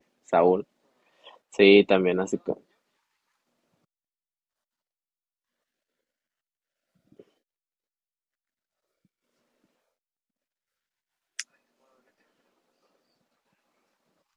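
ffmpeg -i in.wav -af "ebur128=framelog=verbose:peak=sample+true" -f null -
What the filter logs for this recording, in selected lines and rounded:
Integrated loudness:
  I:         -21.5 LUFS
  Threshold: -35.3 LUFS
Loudness range:
  LRA:        24.6 LU
  Threshold: -51.2 LUFS
  LRA low:   -48.3 LUFS
  LRA high:  -23.8 LUFS
Sample peak:
  Peak:       -4.3 dBFS
True peak:
  Peak:       -4.3 dBFS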